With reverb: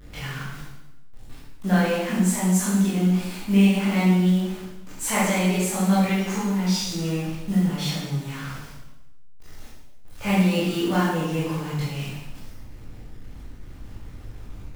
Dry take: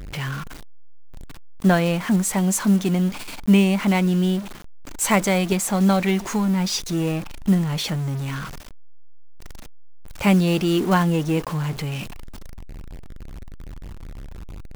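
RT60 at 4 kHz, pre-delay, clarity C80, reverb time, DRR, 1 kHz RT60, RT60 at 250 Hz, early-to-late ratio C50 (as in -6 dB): 0.90 s, 15 ms, 2.5 dB, 0.95 s, -10.0 dB, 0.90 s, 1.1 s, -0.5 dB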